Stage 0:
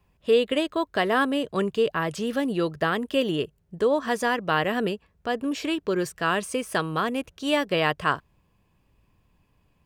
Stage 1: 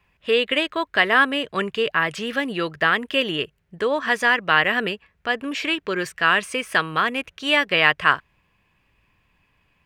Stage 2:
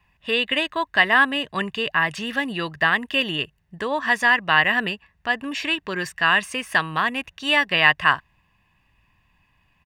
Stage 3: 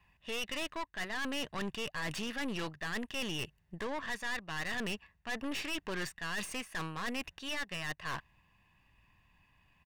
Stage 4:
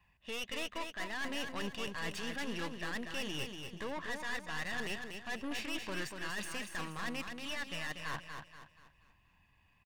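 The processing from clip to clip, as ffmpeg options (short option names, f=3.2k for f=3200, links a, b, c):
-af "equalizer=f=2.1k:w=0.72:g=14.5,volume=-2.5dB"
-af "aecho=1:1:1.1:0.5,volume=-1dB"
-af "areverse,acompressor=threshold=-26dB:ratio=20,areverse,aeval=exprs='(tanh(50.1*val(0)+0.75)-tanh(0.75))/50.1':c=same"
-filter_complex "[0:a]flanger=delay=1.1:depth=2.6:regen=-74:speed=1.7:shape=sinusoidal,asplit=2[a][b];[b]aecho=0:1:239|478|717|956|1195:0.501|0.195|0.0762|0.0297|0.0116[c];[a][c]amix=inputs=2:normalize=0,volume=1.5dB"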